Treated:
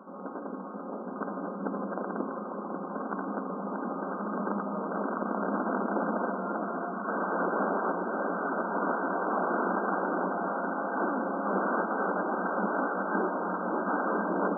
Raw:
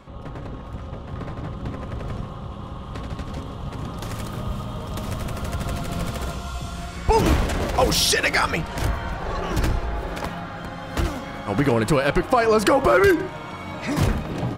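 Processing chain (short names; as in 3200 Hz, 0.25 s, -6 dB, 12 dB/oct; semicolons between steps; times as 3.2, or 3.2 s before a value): wrapped overs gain 21 dB; echo with dull and thin repeats by turns 0.541 s, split 960 Hz, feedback 82%, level -4 dB; FFT band-pass 180–1600 Hz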